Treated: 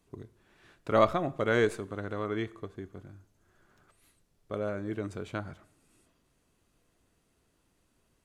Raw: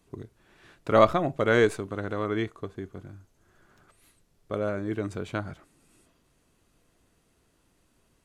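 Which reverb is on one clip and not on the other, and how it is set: plate-style reverb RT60 0.77 s, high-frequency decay 0.8×, DRR 18 dB; gain -4.5 dB

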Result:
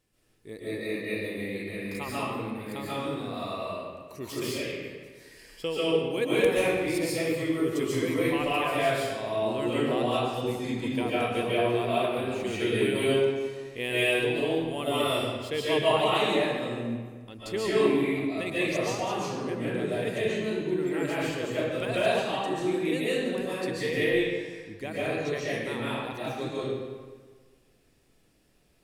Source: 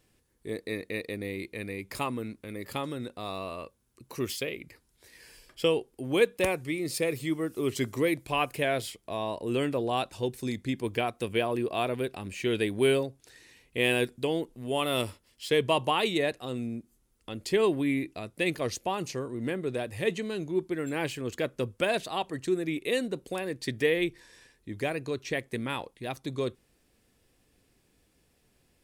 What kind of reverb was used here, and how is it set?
digital reverb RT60 1.5 s, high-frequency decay 0.75×, pre-delay 0.1 s, DRR -9 dB; gain -7 dB

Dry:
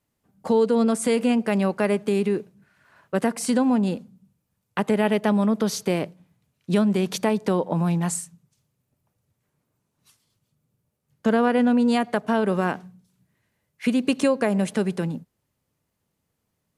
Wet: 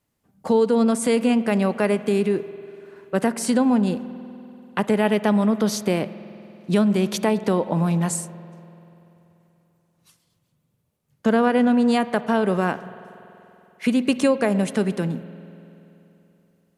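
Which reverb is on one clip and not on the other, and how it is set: spring tank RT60 3.2 s, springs 48 ms, chirp 30 ms, DRR 14.5 dB; gain +1.5 dB

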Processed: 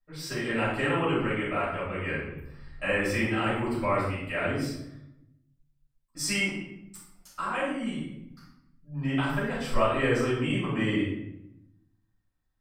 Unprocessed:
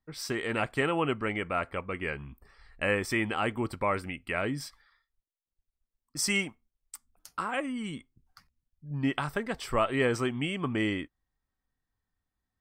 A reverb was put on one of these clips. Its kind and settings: shoebox room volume 230 m³, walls mixed, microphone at 5.9 m; gain -13 dB

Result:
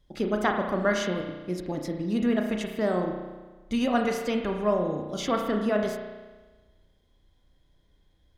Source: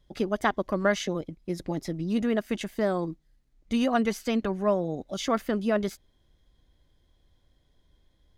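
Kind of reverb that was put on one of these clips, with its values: spring tank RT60 1.3 s, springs 33 ms, chirp 25 ms, DRR 2.5 dB; gain -1 dB

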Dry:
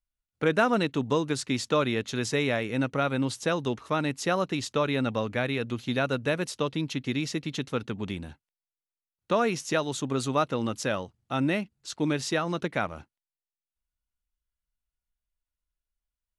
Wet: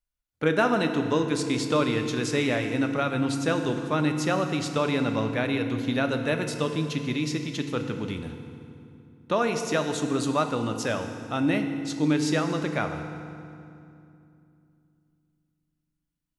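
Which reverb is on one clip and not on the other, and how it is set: FDN reverb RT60 2.6 s, low-frequency decay 1.5×, high-frequency decay 0.75×, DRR 5.5 dB

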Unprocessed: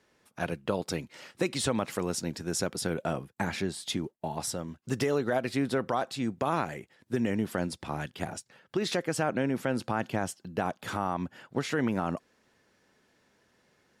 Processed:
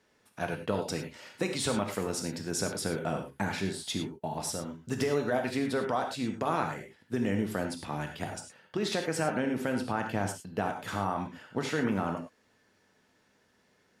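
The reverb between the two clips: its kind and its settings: non-linear reverb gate 0.13 s flat, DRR 3.5 dB; gain -2 dB

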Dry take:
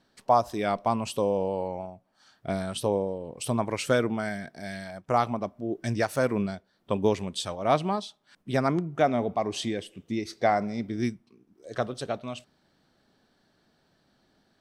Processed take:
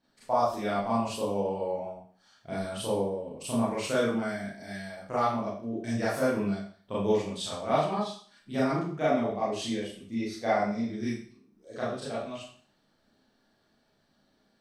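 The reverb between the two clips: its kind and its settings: Schroeder reverb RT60 0.48 s, combs from 27 ms, DRR -9 dB; gain -11.5 dB

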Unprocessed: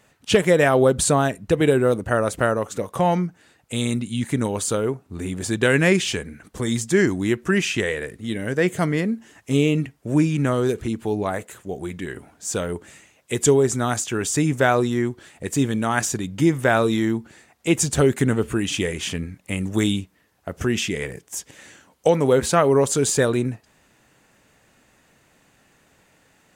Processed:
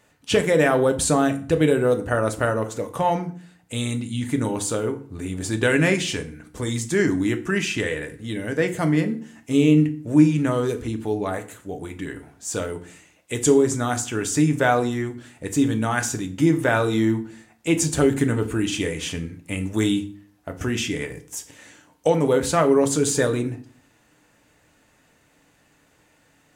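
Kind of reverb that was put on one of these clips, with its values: FDN reverb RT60 0.45 s, low-frequency decay 1.35×, high-frequency decay 0.8×, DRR 6 dB; gain -2.5 dB

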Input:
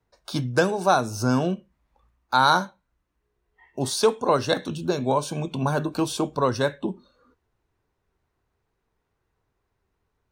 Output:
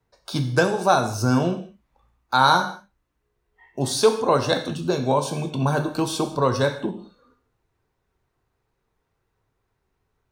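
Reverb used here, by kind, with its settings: non-linear reverb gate 0.23 s falling, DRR 6 dB; gain +1 dB

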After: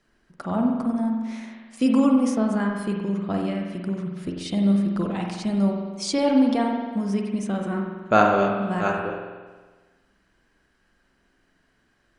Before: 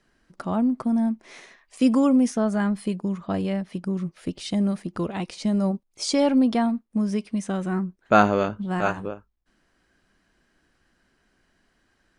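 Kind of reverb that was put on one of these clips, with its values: spring tank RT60 1.4 s, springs 45 ms, chirp 50 ms, DRR 1 dB; gain -1.5 dB

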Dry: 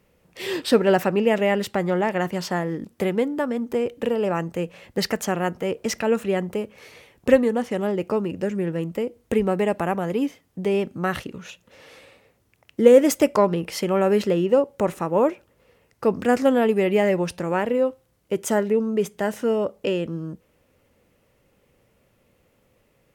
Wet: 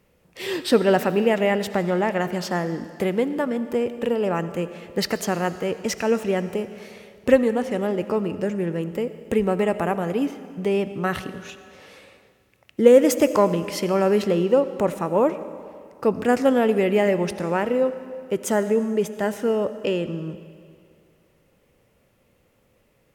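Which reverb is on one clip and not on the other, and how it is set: digital reverb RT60 2.2 s, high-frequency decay 0.95×, pre-delay 40 ms, DRR 12.5 dB

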